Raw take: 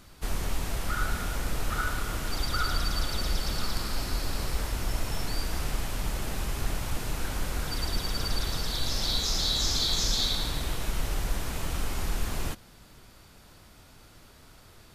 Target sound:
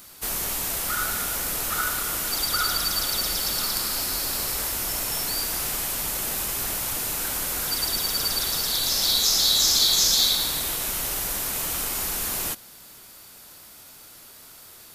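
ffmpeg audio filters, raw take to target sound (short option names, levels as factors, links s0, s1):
-af "aemphasis=mode=production:type=bsi,aeval=exprs='0.316*(cos(1*acos(clip(val(0)/0.316,-1,1)))-cos(1*PI/2))+0.00891*(cos(3*acos(clip(val(0)/0.316,-1,1)))-cos(3*PI/2))':c=same,volume=1.58"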